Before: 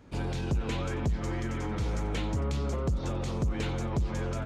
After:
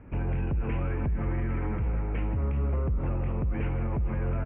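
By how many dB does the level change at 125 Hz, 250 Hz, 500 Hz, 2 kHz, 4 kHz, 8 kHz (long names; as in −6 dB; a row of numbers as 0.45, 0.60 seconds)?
+2.5 dB, −0.5 dB, −1.5 dB, −2.0 dB, below −15 dB, below −35 dB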